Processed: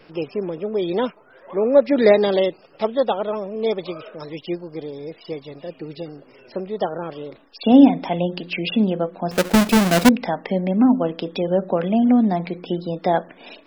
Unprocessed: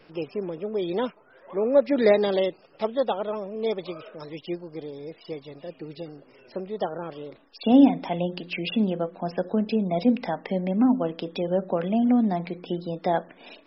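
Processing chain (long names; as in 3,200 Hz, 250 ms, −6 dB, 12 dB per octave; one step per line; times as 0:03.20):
0:09.31–0:10.09: each half-wave held at its own peak
level +5 dB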